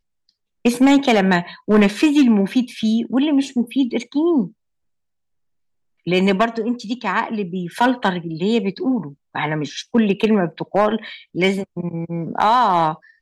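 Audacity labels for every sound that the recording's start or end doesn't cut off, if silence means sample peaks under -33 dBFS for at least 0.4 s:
0.650000	4.480000	sound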